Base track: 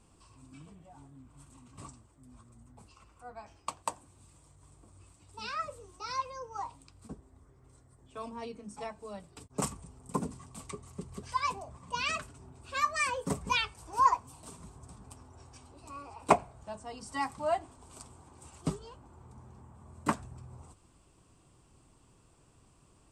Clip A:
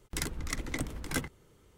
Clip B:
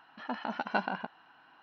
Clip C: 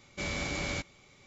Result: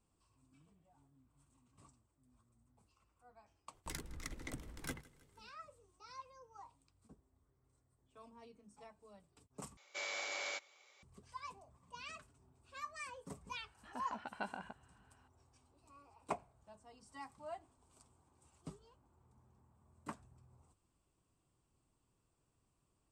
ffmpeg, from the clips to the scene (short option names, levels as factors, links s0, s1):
-filter_complex "[0:a]volume=0.141[s0];[1:a]aecho=1:1:161|322|483|644:0.0841|0.0454|0.0245|0.0132[s1];[3:a]highpass=f=510:w=0.5412,highpass=f=510:w=1.3066[s2];[s0]asplit=2[s3][s4];[s3]atrim=end=9.774[s5];[s2]atrim=end=1.26,asetpts=PTS-STARTPTS,volume=0.531[s6];[s4]atrim=start=11.026[s7];[s1]atrim=end=1.77,asetpts=PTS-STARTPTS,volume=0.266,afade=t=in:d=0.004:c=hsin,afade=t=out:st=1.766:d=0.004:c=hsin,adelay=164493S[s8];[2:a]atrim=end=1.62,asetpts=PTS-STARTPTS,volume=0.237,afade=t=in:d=0.004:c=hsin,afade=t=out:st=1.616:d=0.004:c=hsin,adelay=13660[s9];[s5][s6]acrossfade=d=0.004:c1=hsin:c2=hsin[s10];[s10][s7]acrossfade=d=0.004:c1=hsin:c2=hsin[s11];[s11][s8][s9]amix=inputs=3:normalize=0"